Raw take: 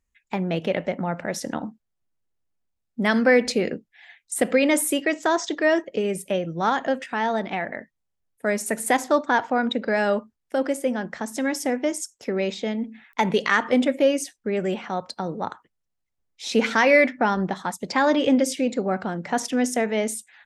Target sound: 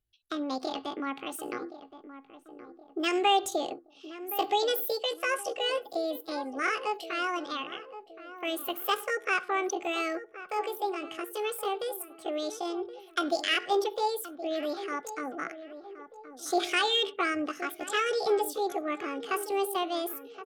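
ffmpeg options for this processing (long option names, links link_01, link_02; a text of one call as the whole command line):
ffmpeg -i in.wav -filter_complex "[0:a]asetrate=70004,aresample=44100,atempo=0.629961,asuperstop=centerf=950:order=8:qfactor=4.8,asplit=2[link_01][link_02];[link_02]adelay=1071,lowpass=frequency=1200:poles=1,volume=-12dB,asplit=2[link_03][link_04];[link_04]adelay=1071,lowpass=frequency=1200:poles=1,volume=0.48,asplit=2[link_05][link_06];[link_06]adelay=1071,lowpass=frequency=1200:poles=1,volume=0.48,asplit=2[link_07][link_08];[link_08]adelay=1071,lowpass=frequency=1200:poles=1,volume=0.48,asplit=2[link_09][link_10];[link_10]adelay=1071,lowpass=frequency=1200:poles=1,volume=0.48[link_11];[link_01][link_03][link_05][link_07][link_09][link_11]amix=inputs=6:normalize=0,volume=-7dB" out.wav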